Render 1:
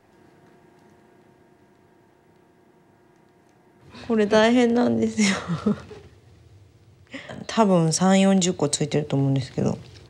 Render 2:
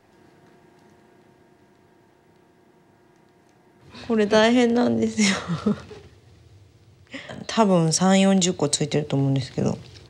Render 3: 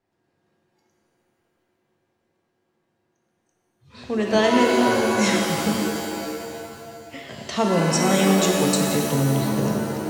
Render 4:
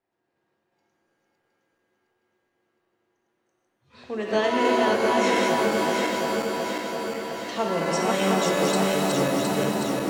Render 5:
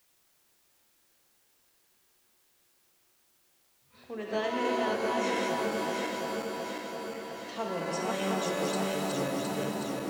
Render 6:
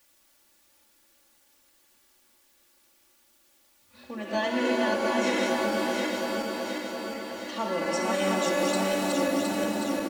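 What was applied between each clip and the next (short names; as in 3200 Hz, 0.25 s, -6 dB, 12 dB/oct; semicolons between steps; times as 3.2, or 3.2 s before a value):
bell 4400 Hz +3 dB 1.5 oct
spectral noise reduction 16 dB; shimmer reverb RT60 2.3 s, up +7 st, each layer -2 dB, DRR 1.5 dB; gain -3.5 dB
regenerating reverse delay 0.357 s, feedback 75%, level -2 dB; tone controls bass -9 dB, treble -6 dB; gain -4 dB
requantised 10-bit, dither triangular; gain -8.5 dB
comb 3.5 ms, depth 98%; gain +2 dB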